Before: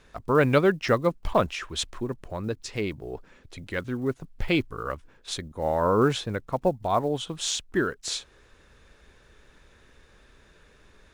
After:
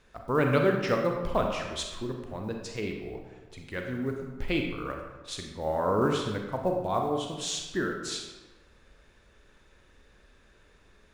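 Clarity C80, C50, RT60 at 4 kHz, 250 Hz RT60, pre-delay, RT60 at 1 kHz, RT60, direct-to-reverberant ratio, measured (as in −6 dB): 6.0 dB, 4.0 dB, 0.80 s, 1.3 s, 31 ms, 1.2 s, 1.2 s, 2.0 dB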